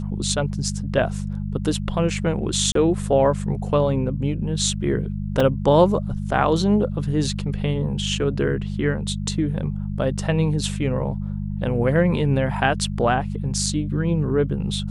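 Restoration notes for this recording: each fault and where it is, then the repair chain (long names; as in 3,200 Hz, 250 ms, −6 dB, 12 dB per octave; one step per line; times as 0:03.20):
mains hum 50 Hz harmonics 4 −27 dBFS
0:02.72–0:02.75: drop-out 33 ms
0:05.40: drop-out 3.3 ms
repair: hum removal 50 Hz, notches 4
repair the gap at 0:02.72, 33 ms
repair the gap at 0:05.40, 3.3 ms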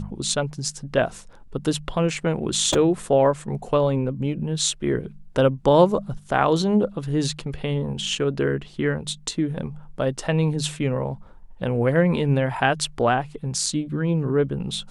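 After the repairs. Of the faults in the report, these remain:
none of them is left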